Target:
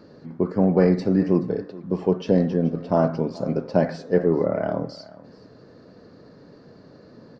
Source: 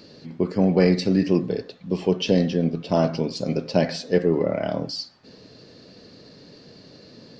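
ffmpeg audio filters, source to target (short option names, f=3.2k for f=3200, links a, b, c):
-af "highshelf=f=2k:t=q:w=1.5:g=-11.5,aecho=1:1:427:0.106"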